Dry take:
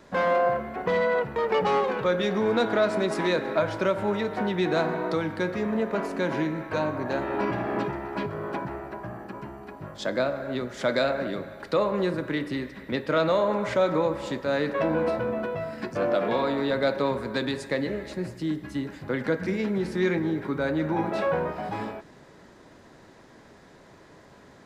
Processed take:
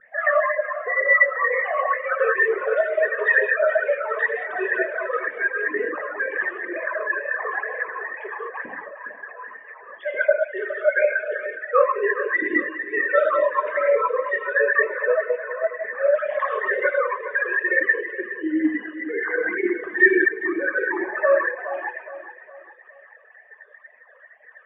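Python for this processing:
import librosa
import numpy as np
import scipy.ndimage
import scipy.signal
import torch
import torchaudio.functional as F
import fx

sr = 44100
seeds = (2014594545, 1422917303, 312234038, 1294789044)

y = fx.sine_speech(x, sr)
y = fx.lowpass_res(y, sr, hz=1800.0, q=14.0)
y = fx.rev_gated(y, sr, seeds[0], gate_ms=280, shape='flat', drr_db=-5.0)
y = fx.dereverb_blind(y, sr, rt60_s=1.7)
y = fx.peak_eq(y, sr, hz=210.0, db=fx.steps((0.0, 6.0), (12.56, 13.5)), octaves=0.4)
y = fx.phaser_stages(y, sr, stages=8, low_hz=240.0, high_hz=1400.0, hz=2.1, feedback_pct=25)
y = fx.peak_eq(y, sr, hz=1100.0, db=4.5, octaves=0.27)
y = fx.notch(y, sr, hz=1400.0, q=8.6)
y = fx.echo_feedback(y, sr, ms=414, feedback_pct=44, wet_db=-13.0)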